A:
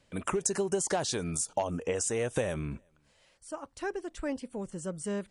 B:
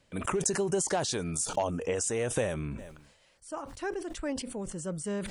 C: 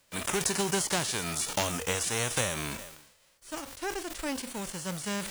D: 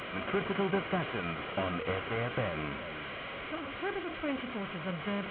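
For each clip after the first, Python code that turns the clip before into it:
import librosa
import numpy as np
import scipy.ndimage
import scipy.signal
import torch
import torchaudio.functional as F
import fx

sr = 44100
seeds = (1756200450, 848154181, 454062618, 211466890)

y1 = fx.sustainer(x, sr, db_per_s=65.0)
y2 = fx.envelope_flatten(y1, sr, power=0.3)
y3 = fx.delta_mod(y2, sr, bps=16000, step_db=-32.5)
y3 = fx.notch_comb(y3, sr, f0_hz=890.0)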